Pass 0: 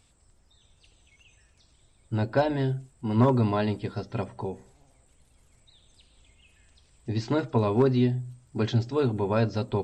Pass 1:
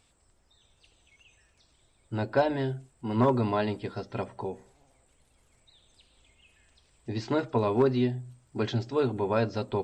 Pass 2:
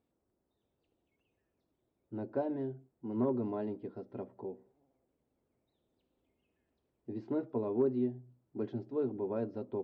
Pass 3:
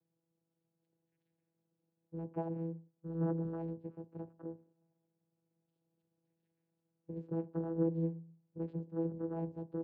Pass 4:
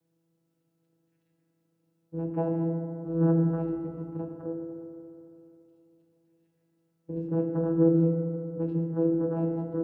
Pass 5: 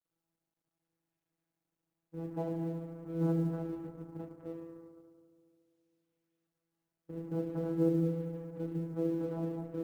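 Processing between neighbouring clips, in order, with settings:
bass and treble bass −6 dB, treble −3 dB
resonant band-pass 310 Hz, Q 1.3; level −4.5 dB
channel vocoder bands 8, saw 165 Hz; level −1.5 dB
feedback delay network reverb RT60 3 s, high-frequency decay 0.25×, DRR 1 dB; level +6.5 dB
mu-law and A-law mismatch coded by A; level −7 dB

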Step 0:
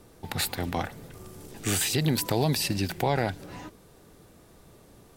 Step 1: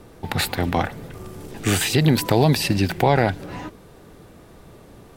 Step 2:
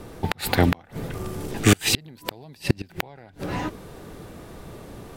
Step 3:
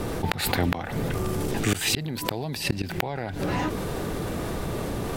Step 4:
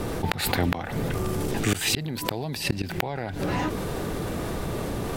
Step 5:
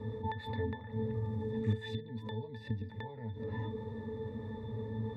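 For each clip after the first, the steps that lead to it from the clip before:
bass and treble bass 0 dB, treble −7 dB; level +8.5 dB
gate with flip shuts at −9 dBFS, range −33 dB; level +5 dB
envelope flattener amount 70%; level −9 dB
no processing that can be heard
resonances in every octave A, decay 0.19 s

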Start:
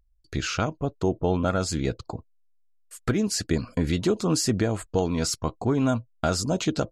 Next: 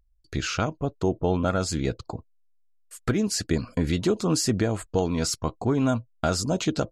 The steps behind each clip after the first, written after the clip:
no processing that can be heard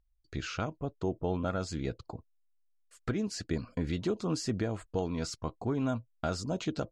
high-frequency loss of the air 69 metres
level −8 dB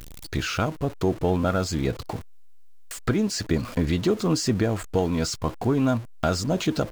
converter with a step at zero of −44 dBFS
one half of a high-frequency compander encoder only
level +8.5 dB

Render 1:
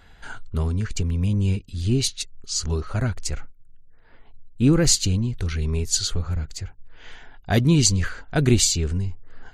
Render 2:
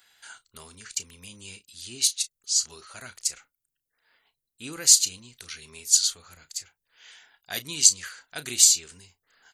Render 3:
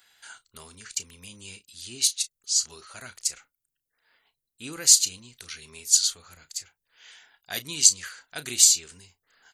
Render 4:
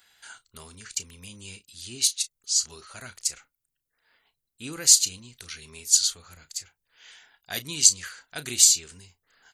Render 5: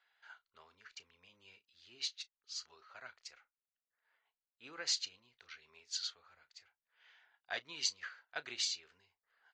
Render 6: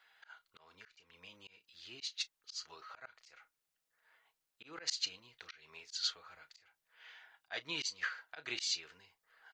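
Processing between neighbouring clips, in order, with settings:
first difference; double-tracking delay 33 ms −13.5 dB; level +5 dB
no processing that can be heard
low-shelf EQ 200 Hz +5 dB
inverse Chebyshev low-pass filter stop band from 11,000 Hz, stop band 50 dB; three-way crossover with the lows and the highs turned down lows −20 dB, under 480 Hz, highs −12 dB, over 2,400 Hz; expander for the loud parts 1.5 to 1, over −51 dBFS
comb filter 6.3 ms, depth 33%; volume swells 212 ms; level +8.5 dB

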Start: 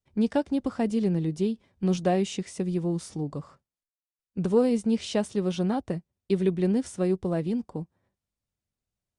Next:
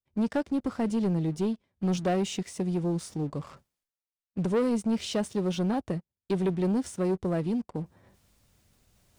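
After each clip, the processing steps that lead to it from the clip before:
leveller curve on the samples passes 2
reversed playback
upward compression, threshold −31 dBFS
reversed playback
level −7 dB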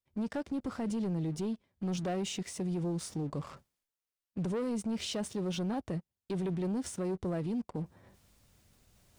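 brickwall limiter −29 dBFS, peak gain reduction 9.5 dB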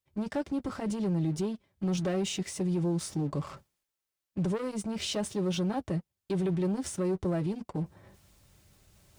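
notch comb filter 240 Hz
level +5 dB

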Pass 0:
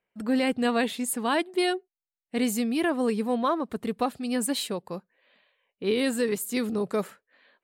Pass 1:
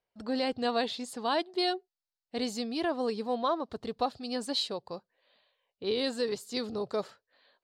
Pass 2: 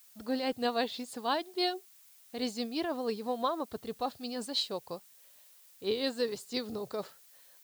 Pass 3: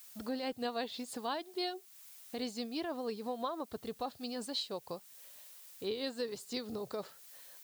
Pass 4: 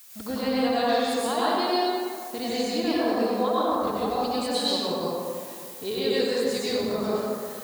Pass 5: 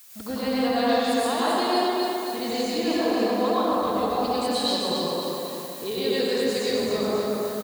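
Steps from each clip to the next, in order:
drawn EQ curve 120 Hz 0 dB, 180 Hz −11 dB, 730 Hz −1 dB, 2,300 Hz −10 dB, 4,600 Hz +5 dB, 9,600 Hz −17 dB, 14,000 Hz −23 dB
amplitude tremolo 6.1 Hz, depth 50%; background noise blue −59 dBFS
downward compressor 2 to 1, threshold −47 dBFS, peak gain reduction 12 dB; level +4.5 dB
dense smooth reverb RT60 2.3 s, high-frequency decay 0.45×, pre-delay 85 ms, DRR −9 dB; level +5 dB
repeating echo 267 ms, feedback 51%, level −5 dB

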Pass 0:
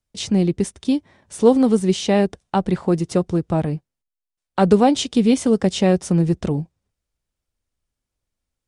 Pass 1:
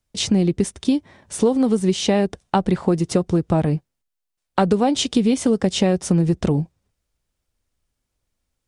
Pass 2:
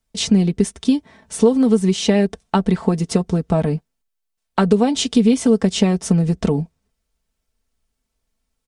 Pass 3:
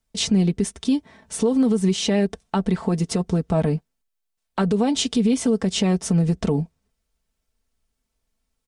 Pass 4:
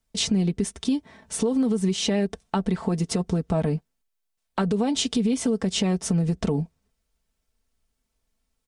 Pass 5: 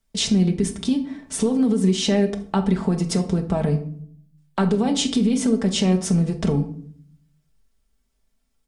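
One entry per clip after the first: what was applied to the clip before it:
downward compressor 6 to 1, threshold −19 dBFS, peak gain reduction 11.5 dB; level +5 dB
comb filter 4.5 ms, depth 61%
brickwall limiter −10 dBFS, peak gain reduction 7.5 dB; level −1.5 dB
downward compressor 2 to 1, threshold −22 dBFS, peak gain reduction 4.5 dB
rectangular room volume 810 cubic metres, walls furnished, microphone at 1.2 metres; level +1.5 dB

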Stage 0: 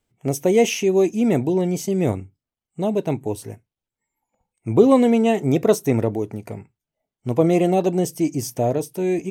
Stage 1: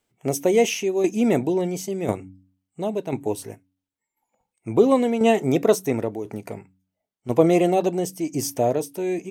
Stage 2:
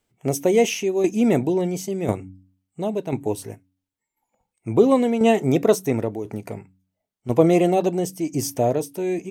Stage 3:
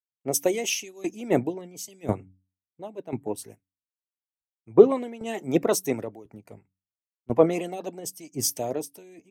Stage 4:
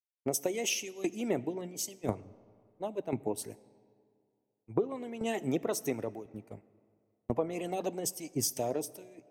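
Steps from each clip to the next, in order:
low-shelf EQ 140 Hz −12 dB; shaped tremolo saw down 0.96 Hz, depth 60%; hum removal 93.64 Hz, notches 3; level +3 dB
low-shelf EQ 140 Hz +6.5 dB
harmonic and percussive parts rebalanced harmonic −11 dB; multiband upward and downward expander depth 100%; level −4 dB
downward expander −41 dBFS; downward compressor 8 to 1, threshold −30 dBFS, peak gain reduction 22.5 dB; convolution reverb RT60 2.3 s, pre-delay 10 ms, DRR 20 dB; level +2 dB

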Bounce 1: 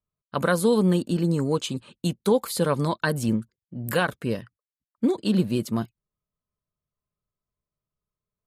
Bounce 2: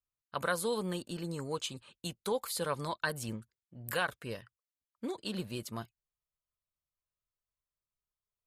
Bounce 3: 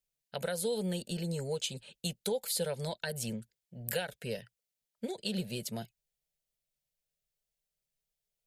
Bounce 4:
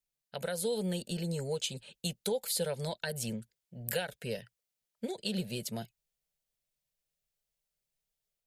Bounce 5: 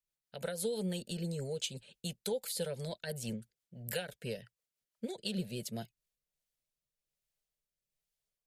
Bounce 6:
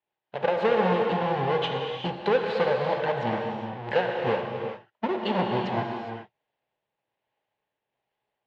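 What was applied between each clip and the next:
parametric band 220 Hz −12 dB 2.2 octaves; level −6 dB
downward compressor 3 to 1, threshold −36 dBFS, peak gain reduction 8 dB; phaser with its sweep stopped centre 300 Hz, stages 6; level +6.5 dB
automatic gain control gain up to 3 dB; level −2.5 dB
rotating-speaker cabinet horn 6 Hz, later 1.2 Hz, at 0:05.54; level −1 dB
each half-wave held at its own peak; loudspeaker in its box 150–2,800 Hz, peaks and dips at 160 Hz −10 dB, 240 Hz −3 dB, 850 Hz +10 dB, 1,300 Hz −7 dB, 2,300 Hz −4 dB; reverb whose tail is shaped and stops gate 440 ms flat, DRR 1 dB; level +9 dB

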